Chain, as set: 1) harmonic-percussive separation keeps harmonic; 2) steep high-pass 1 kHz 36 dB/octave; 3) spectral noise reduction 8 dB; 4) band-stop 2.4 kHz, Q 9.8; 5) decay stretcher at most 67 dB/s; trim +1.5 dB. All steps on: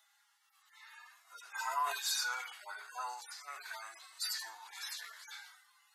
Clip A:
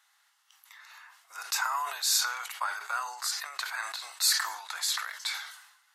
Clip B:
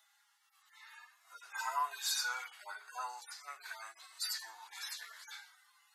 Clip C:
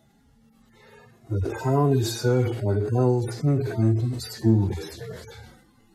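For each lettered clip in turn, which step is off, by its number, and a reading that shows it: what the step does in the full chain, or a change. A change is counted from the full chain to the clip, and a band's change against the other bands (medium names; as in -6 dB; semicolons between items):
1, 500 Hz band -7.0 dB; 5, 500 Hz band -3.0 dB; 2, 500 Hz band +28.5 dB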